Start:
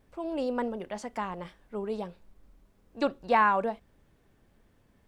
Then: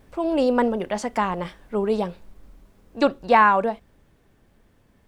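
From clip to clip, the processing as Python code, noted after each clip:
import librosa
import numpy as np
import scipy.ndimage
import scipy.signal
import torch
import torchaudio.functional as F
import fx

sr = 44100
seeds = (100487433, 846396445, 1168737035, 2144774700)

y = fx.rider(x, sr, range_db=3, speed_s=2.0)
y = y * 10.0 ** (8.0 / 20.0)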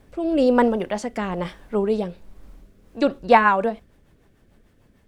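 y = fx.rotary_switch(x, sr, hz=1.1, then_hz=6.7, switch_at_s=2.48)
y = y * 10.0 ** (3.5 / 20.0)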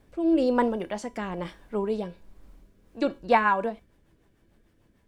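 y = fx.comb_fb(x, sr, f0_hz=330.0, decay_s=0.26, harmonics='odd', damping=0.0, mix_pct=70)
y = y * 10.0 ** (3.5 / 20.0)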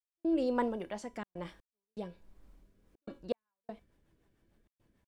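y = fx.step_gate(x, sr, bpm=122, pattern='..xxxxxxxx.xx.', floor_db=-60.0, edge_ms=4.5)
y = y * 10.0 ** (-8.0 / 20.0)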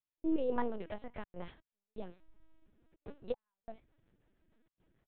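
y = fx.lpc_vocoder(x, sr, seeds[0], excitation='pitch_kept', order=8)
y = y * 10.0 ** (-1.5 / 20.0)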